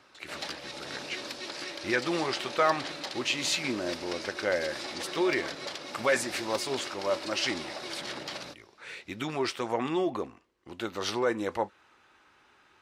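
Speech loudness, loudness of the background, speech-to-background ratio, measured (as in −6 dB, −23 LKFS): −31.5 LKFS, −38.0 LKFS, 6.5 dB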